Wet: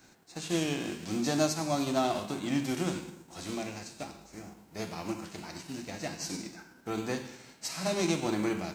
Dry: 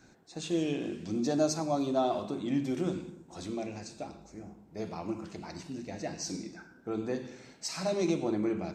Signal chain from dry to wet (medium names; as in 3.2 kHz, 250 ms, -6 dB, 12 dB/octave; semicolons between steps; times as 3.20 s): formants flattened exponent 0.6; band-stop 3.5 kHz, Q 28